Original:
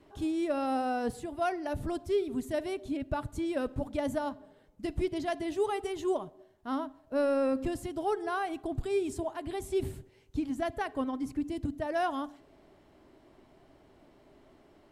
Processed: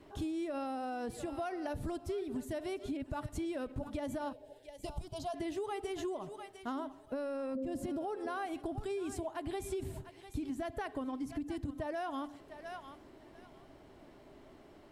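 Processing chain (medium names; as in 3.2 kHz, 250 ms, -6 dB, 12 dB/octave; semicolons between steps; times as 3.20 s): 7.55–8.17 s: small resonant body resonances 240/530 Hz, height 18 dB, ringing for 45 ms; on a send: thinning echo 699 ms, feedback 24%, high-pass 1 kHz, level -14 dB; on the sum: peak limiter -25 dBFS, peak gain reduction 14 dB; 4.33–5.34 s: touch-sensitive phaser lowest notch 200 Hz, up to 1.2 kHz, full sweep at -20 dBFS; compression, threshold -38 dBFS, peak gain reduction 9.5 dB; trim +2.5 dB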